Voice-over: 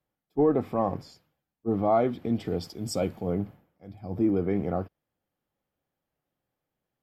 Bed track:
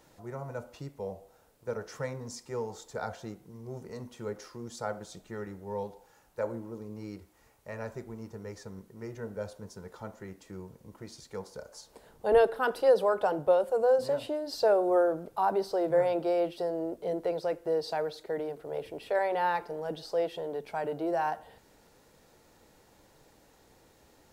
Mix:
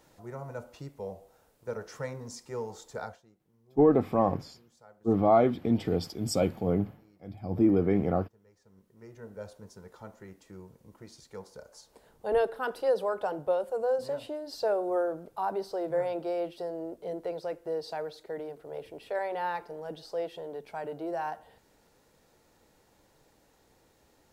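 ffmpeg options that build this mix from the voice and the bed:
-filter_complex "[0:a]adelay=3400,volume=1.5dB[a];[1:a]volume=16dB,afade=t=out:st=2.99:d=0.23:silence=0.1,afade=t=in:st=8.61:d=0.88:silence=0.141254[b];[a][b]amix=inputs=2:normalize=0"

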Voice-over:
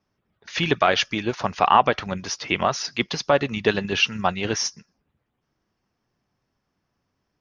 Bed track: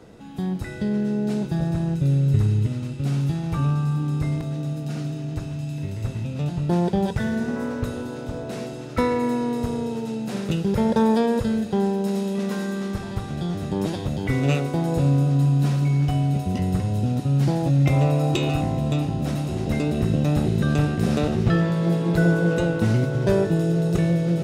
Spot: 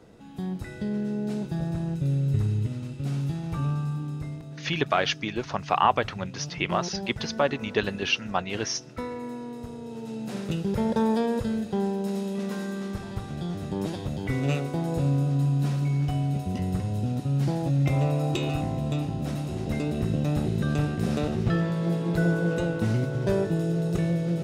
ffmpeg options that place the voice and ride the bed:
-filter_complex "[0:a]adelay=4100,volume=-5dB[a];[1:a]volume=2dB,afade=t=out:st=3.77:d=0.63:silence=0.446684,afade=t=in:st=9.81:d=0.44:silence=0.421697[b];[a][b]amix=inputs=2:normalize=0"

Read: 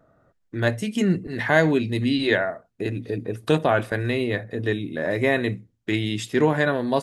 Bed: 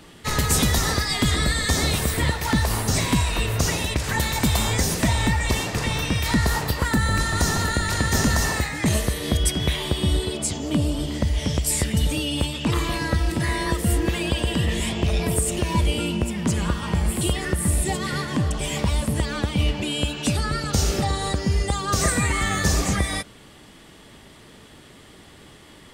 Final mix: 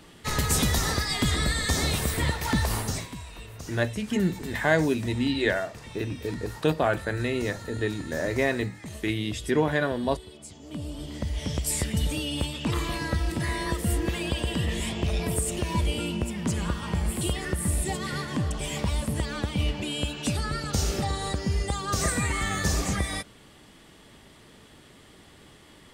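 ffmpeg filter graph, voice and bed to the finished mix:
-filter_complex "[0:a]adelay=3150,volume=-4dB[a];[1:a]volume=10dB,afade=t=out:st=2.77:d=0.32:silence=0.177828,afade=t=in:st=10.55:d=1.15:silence=0.199526[b];[a][b]amix=inputs=2:normalize=0"

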